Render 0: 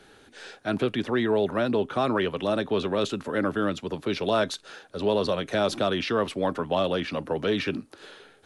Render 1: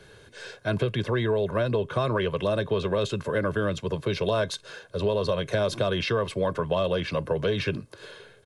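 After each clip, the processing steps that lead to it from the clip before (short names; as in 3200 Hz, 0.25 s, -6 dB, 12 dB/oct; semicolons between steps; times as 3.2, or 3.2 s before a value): bell 120 Hz +9.5 dB 1.3 oct; comb 1.9 ms, depth 64%; compressor, threshold -21 dBFS, peak gain reduction 6 dB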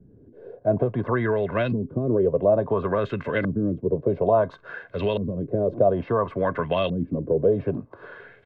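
small resonant body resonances 260/700/2000 Hz, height 7 dB; LFO low-pass saw up 0.58 Hz 210–3100 Hz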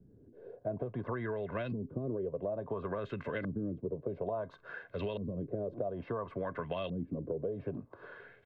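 compressor, threshold -25 dBFS, peak gain reduction 11 dB; gain -8 dB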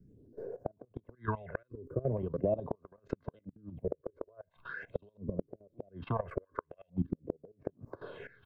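level quantiser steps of 18 dB; phaser stages 6, 0.42 Hz, lowest notch 190–3400 Hz; flipped gate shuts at -31 dBFS, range -33 dB; gain +12 dB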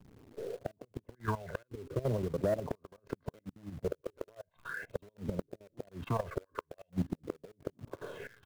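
in parallel at -5 dB: companded quantiser 4-bit; on the sum: soft clip -20.5 dBFS, distortion -14 dB; gain -2 dB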